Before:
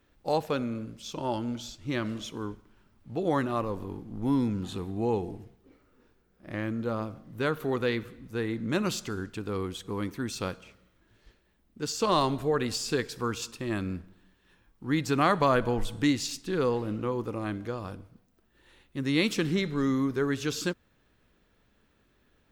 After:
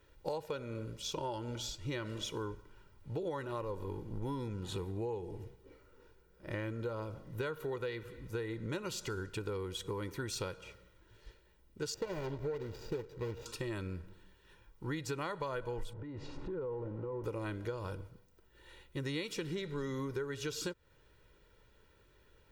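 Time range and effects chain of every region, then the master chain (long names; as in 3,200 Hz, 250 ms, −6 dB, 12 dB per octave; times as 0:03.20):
0:11.94–0:13.46: running median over 41 samples + parametric band 9,700 Hz −12 dB 0.48 octaves
0:15.93–0:17.24: converter with a step at zero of −36 dBFS + low-pass filter 1,000 Hz + downward compressor 12 to 1, threshold −36 dBFS
whole clip: comb filter 2.1 ms, depth 66%; downward compressor 10 to 1, threshold −35 dBFS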